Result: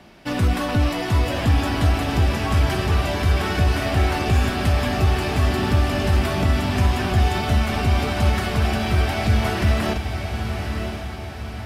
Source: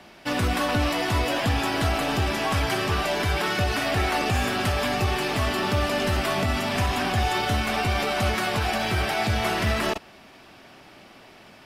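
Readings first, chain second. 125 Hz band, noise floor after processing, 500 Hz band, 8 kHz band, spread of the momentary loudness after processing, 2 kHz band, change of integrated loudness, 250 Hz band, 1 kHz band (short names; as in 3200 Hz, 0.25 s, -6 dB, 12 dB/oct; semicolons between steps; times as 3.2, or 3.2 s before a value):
+8.0 dB, -31 dBFS, +1.0 dB, -1.0 dB, 7 LU, -0.5 dB, +3.0 dB, +4.5 dB, 0.0 dB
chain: low shelf 270 Hz +10 dB; diffused feedback echo 1.03 s, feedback 50%, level -6.5 dB; gain -2 dB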